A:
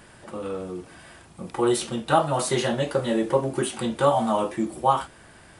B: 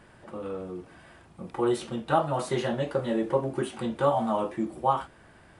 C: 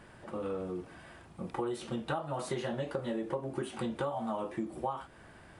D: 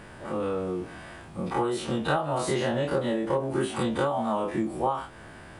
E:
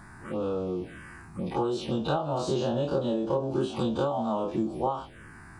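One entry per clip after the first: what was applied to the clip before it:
treble shelf 3.9 kHz -11.5 dB; trim -3.5 dB
compression 12:1, threshold -31 dBFS, peak gain reduction 14 dB
every event in the spectrogram widened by 60 ms; trim +5 dB
touch-sensitive phaser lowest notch 440 Hz, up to 2 kHz, full sweep at -25.5 dBFS

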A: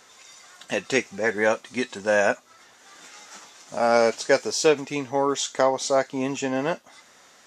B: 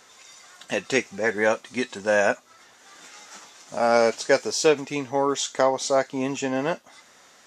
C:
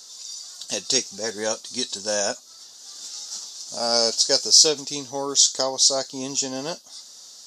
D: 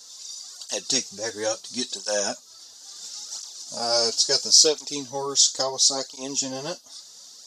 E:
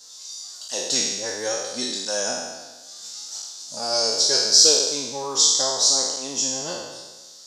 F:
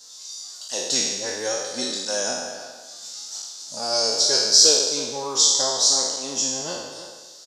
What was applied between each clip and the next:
no audible change
resonant high shelf 3.2 kHz +13.5 dB, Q 3; trim -5 dB
cancelling through-zero flanger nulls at 0.73 Hz, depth 5.6 ms; trim +1.5 dB
spectral sustain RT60 1.24 s; trim -2.5 dB
speakerphone echo 320 ms, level -11 dB

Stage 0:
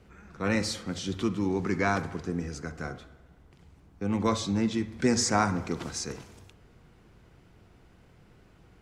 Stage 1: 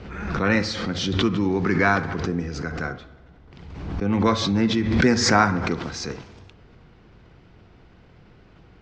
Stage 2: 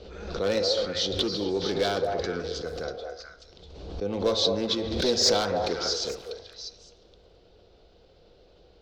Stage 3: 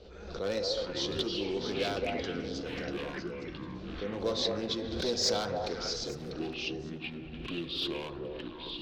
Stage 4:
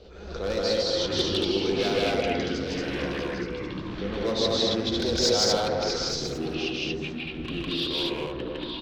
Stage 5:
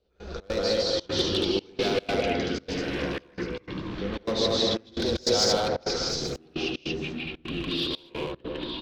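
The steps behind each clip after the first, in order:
dynamic bell 1.6 kHz, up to +5 dB, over -46 dBFS, Q 2.2; low-pass 5.3 kHz 24 dB/octave; swell ahead of each attack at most 44 dB/s; trim +5.5 dB
hard clipper -14 dBFS, distortion -14 dB; ten-band graphic EQ 125 Hz -11 dB, 250 Hz -7 dB, 500 Hz +10 dB, 1 kHz -7 dB, 2 kHz -12 dB, 4 kHz +11 dB; repeats whose band climbs or falls 214 ms, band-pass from 630 Hz, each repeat 1.4 oct, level -0.5 dB; trim -4.5 dB
ever faster or slower copies 380 ms, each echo -6 st, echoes 3, each echo -6 dB; trim -7 dB
loudspeakers at several distances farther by 54 m 0 dB, 79 m -1 dB; trim +3 dB
trance gate "..xx.xxxxx.xxxxx" 151 bpm -24 dB

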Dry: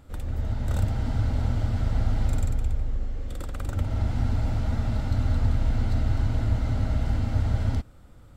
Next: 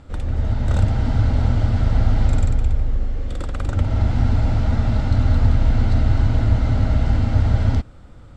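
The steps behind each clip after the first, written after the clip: Bessel low-pass 6.1 kHz, order 4; trim +7.5 dB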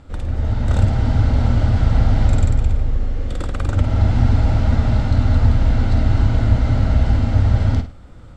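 on a send: flutter echo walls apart 8.8 m, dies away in 0.3 s; on the sum: level rider gain up to 3.5 dB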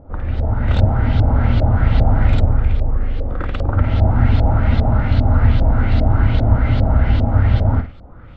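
LFO low-pass saw up 2.5 Hz 580–4100 Hz; trim +1 dB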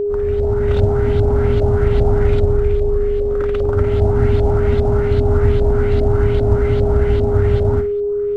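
CVSD coder 64 kbps; distance through air 67 m; whistle 410 Hz -14 dBFS; trim -2 dB

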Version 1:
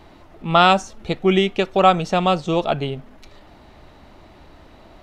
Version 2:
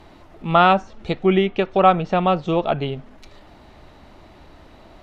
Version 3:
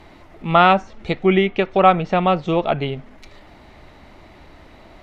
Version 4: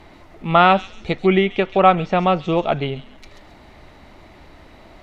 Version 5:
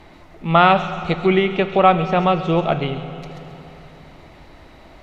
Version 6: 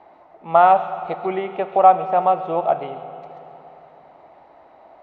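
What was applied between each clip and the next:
low-pass that closes with the level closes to 2.4 kHz, closed at -15.5 dBFS
peaking EQ 2.1 kHz +6 dB 0.37 oct; trim +1 dB
feedback echo behind a high-pass 135 ms, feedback 31%, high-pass 4.9 kHz, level -3.5 dB
reverberation RT60 3.5 s, pre-delay 3 ms, DRR 10 dB
band-pass filter 750 Hz, Q 2.5; trim +4 dB

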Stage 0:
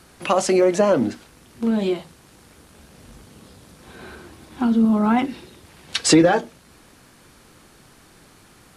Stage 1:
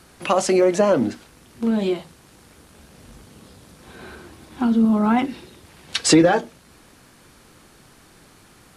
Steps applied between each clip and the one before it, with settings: no audible change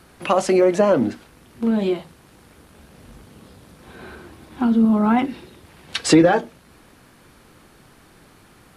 peaking EQ 6.8 kHz -6 dB 1.6 oct; trim +1 dB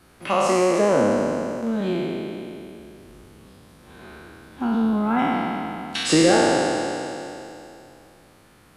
spectral sustain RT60 2.87 s; trim -6.5 dB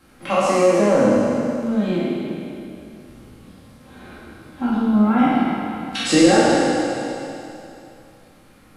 simulated room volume 390 m³, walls furnished, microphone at 2.2 m; trim -2 dB

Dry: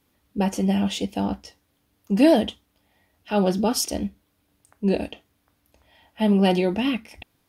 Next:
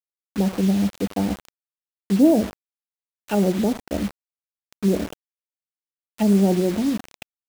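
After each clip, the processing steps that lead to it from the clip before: feedback delay 79 ms, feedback 39%, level -18 dB; low-pass that closes with the level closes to 500 Hz, closed at -20 dBFS; bit crusher 6-bit; trim +2.5 dB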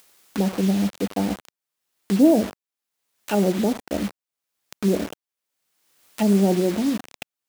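bass shelf 100 Hz -11 dB; upward compressor, threshold -28 dBFS; trim +1 dB

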